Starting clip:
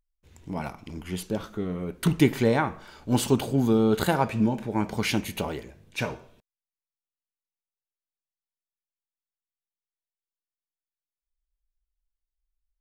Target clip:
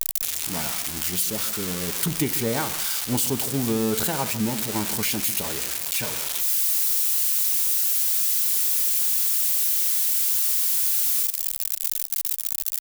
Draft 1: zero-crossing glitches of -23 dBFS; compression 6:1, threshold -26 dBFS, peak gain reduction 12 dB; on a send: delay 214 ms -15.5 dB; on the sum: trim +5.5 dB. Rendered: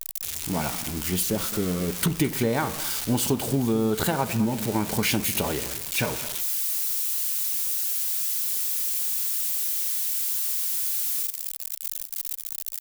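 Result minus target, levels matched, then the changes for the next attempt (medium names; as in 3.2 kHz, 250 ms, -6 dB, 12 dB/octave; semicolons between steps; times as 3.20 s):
echo 66 ms late; zero-crossing glitches: distortion -11 dB
change: zero-crossing glitches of -11.5 dBFS; change: delay 148 ms -15.5 dB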